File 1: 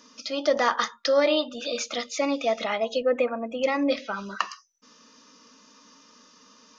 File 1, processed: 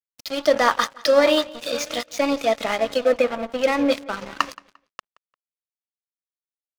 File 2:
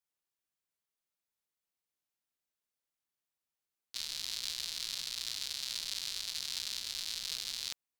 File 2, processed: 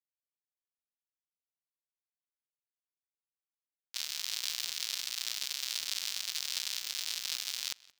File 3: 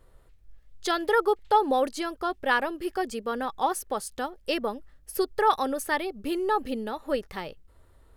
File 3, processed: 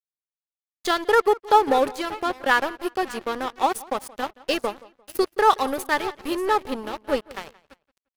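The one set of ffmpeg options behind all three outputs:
-filter_complex "[0:a]asplit=2[a][b];[b]aecho=0:1:585:0.188[c];[a][c]amix=inputs=2:normalize=0,aeval=exprs='sgn(val(0))*max(abs(val(0))-0.0178,0)':c=same,asplit=2[d][e];[e]adelay=174,lowpass=f=4.8k:p=1,volume=-21dB,asplit=2[f][g];[g]adelay=174,lowpass=f=4.8k:p=1,volume=0.28[h];[f][h]amix=inputs=2:normalize=0[i];[d][i]amix=inputs=2:normalize=0,volume=6dB"

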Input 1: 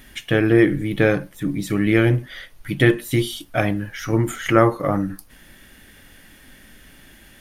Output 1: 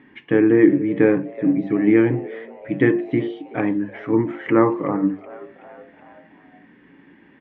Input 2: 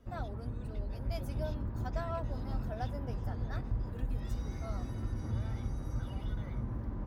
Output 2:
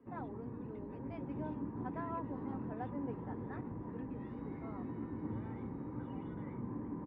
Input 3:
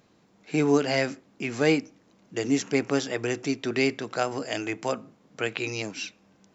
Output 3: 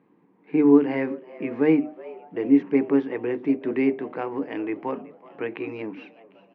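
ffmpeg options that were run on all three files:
-filter_complex "[0:a]highpass=170,equalizer=f=170:t=q:w=4:g=6,equalizer=f=290:t=q:w=4:g=10,equalizer=f=420:t=q:w=4:g=5,equalizer=f=640:t=q:w=4:g=-10,equalizer=f=950:t=q:w=4:g=6,equalizer=f=1.4k:t=q:w=4:g=-8,lowpass=f=2.1k:w=0.5412,lowpass=f=2.1k:w=1.3066,bandreject=f=50:t=h:w=6,bandreject=f=100:t=h:w=6,bandreject=f=150:t=h:w=6,bandreject=f=200:t=h:w=6,bandreject=f=250:t=h:w=6,bandreject=f=300:t=h:w=6,bandreject=f=350:t=h:w=6,bandreject=f=400:t=h:w=6,asplit=5[a][b][c][d][e];[b]adelay=375,afreqshift=110,volume=-20.5dB[f];[c]adelay=750,afreqshift=220,volume=-25.5dB[g];[d]adelay=1125,afreqshift=330,volume=-30.6dB[h];[e]adelay=1500,afreqshift=440,volume=-35.6dB[i];[a][f][g][h][i]amix=inputs=5:normalize=0,volume=-1dB"

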